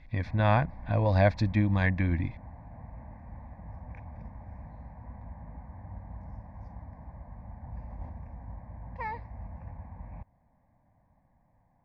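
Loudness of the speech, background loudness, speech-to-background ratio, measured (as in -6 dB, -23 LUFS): -27.0 LUFS, -45.0 LUFS, 18.0 dB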